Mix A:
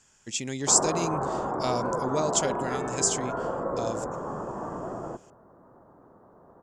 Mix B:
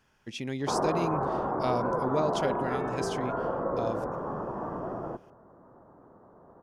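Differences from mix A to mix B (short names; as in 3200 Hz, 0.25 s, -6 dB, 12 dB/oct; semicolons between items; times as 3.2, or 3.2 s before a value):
speech: remove synth low-pass 7400 Hz, resonance Q 10; master: add high shelf 5100 Hz -11 dB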